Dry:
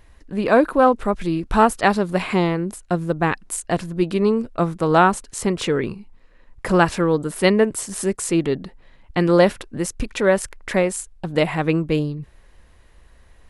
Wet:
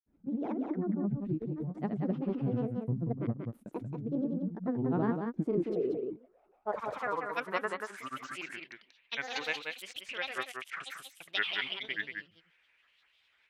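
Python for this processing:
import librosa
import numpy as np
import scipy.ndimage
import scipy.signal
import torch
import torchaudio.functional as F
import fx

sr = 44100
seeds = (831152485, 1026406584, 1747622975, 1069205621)

y = fx.filter_sweep_bandpass(x, sr, from_hz=230.0, to_hz=2600.0, start_s=5.11, end_s=8.61, q=5.7)
y = fx.over_compress(y, sr, threshold_db=-30.0, ratio=-1.0)
y = fx.granulator(y, sr, seeds[0], grain_ms=100.0, per_s=20.0, spray_ms=100.0, spread_st=7)
y = y + 10.0 ** (-5.0 / 20.0) * np.pad(y, (int(184 * sr / 1000.0), 0))[:len(y)]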